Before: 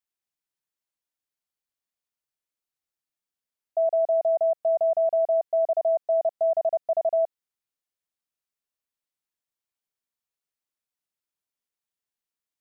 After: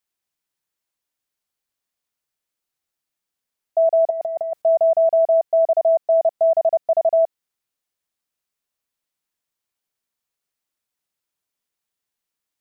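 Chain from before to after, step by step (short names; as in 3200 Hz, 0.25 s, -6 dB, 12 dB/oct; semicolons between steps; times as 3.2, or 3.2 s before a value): 4.1–4.62 negative-ratio compressor -28 dBFS, ratio -0.5; gain +6.5 dB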